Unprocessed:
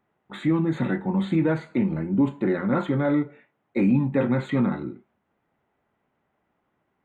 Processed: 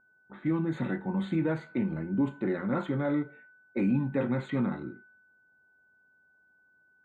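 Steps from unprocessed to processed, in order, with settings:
steady tone 1,500 Hz −46 dBFS
low-pass that shuts in the quiet parts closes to 730 Hz, open at −20.5 dBFS
level −6.5 dB

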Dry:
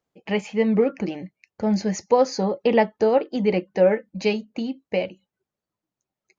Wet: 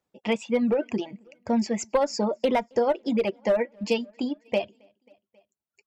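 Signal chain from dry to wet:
asymmetric clip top −13 dBFS
on a send: repeating echo 293 ms, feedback 50%, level −22.5 dB
on the sum: downward compressor, threshold −18 dBFS, peak gain reduction 5 dB
reverb reduction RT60 1.2 s
wrong playback speed 44.1 kHz file played as 48 kHz

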